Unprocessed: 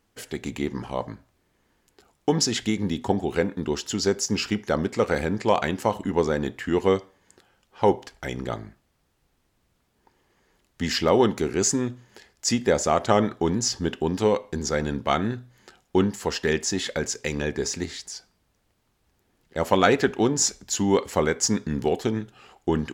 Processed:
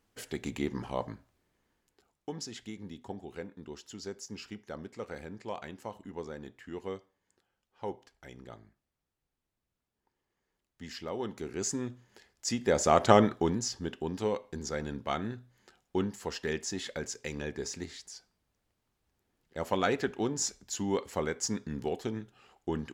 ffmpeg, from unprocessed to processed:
-af "volume=4.47,afade=t=out:st=1.09:d=1.23:silence=0.223872,afade=t=in:st=11.17:d=0.72:silence=0.354813,afade=t=in:st=12.59:d=0.48:silence=0.354813,afade=t=out:st=13.07:d=0.61:silence=0.316228"

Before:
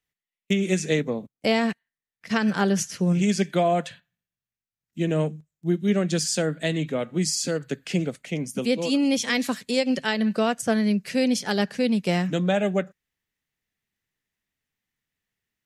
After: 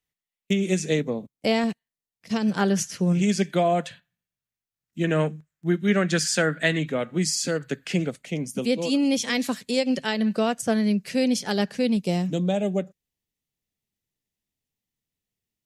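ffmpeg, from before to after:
-af "asetnsamples=n=441:p=0,asendcmd='1.64 equalizer g -11.5;2.57 equalizer g -0.5;5.04 equalizer g 10.5;6.79 equalizer g 3.5;8.11 equalizer g -3;11.97 equalizer g -13.5',equalizer=f=1600:t=o:w=1.3:g=-3.5"

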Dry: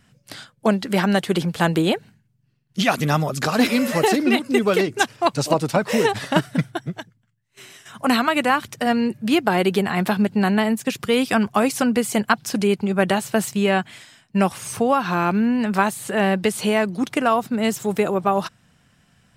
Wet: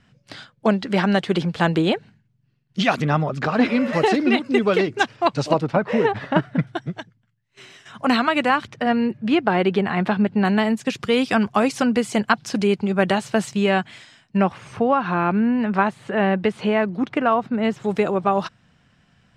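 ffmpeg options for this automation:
-af "asetnsamples=n=441:p=0,asendcmd='3.02 lowpass f 2500;3.93 lowpass f 4300;5.61 lowpass f 2100;6.67 lowpass f 5100;8.67 lowpass f 3000;10.45 lowpass f 6100;14.37 lowpass f 2500;17.84 lowpass f 5000',lowpass=4800"

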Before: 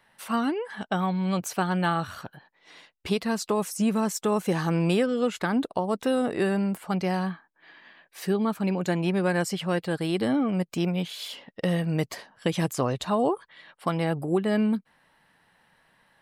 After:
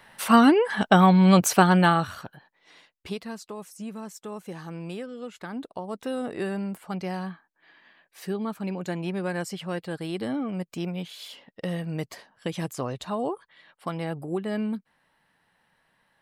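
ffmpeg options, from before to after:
-af "volume=7.5,afade=t=out:st=1.48:d=0.68:silence=0.316228,afade=t=out:st=2.16:d=1.32:silence=0.237137,afade=t=in:st=5.28:d=1.05:silence=0.421697"

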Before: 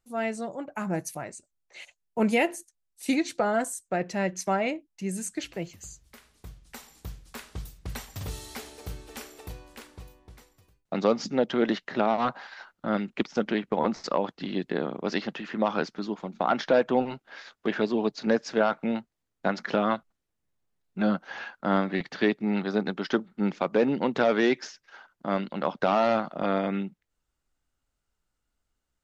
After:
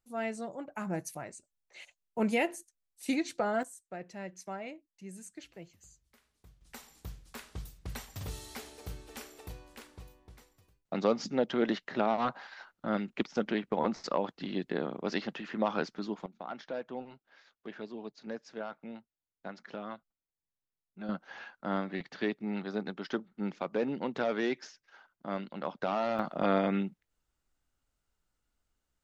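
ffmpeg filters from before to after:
-af "asetnsamples=n=441:p=0,asendcmd='3.63 volume volume -14.5dB;6.61 volume volume -4.5dB;16.26 volume volume -16.5dB;21.09 volume volume -8.5dB;26.19 volume volume -1dB',volume=0.531"

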